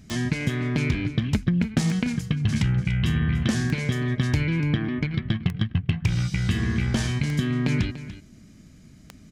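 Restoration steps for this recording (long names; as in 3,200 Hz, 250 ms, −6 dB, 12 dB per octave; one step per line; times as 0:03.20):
click removal
echo removal 291 ms −14 dB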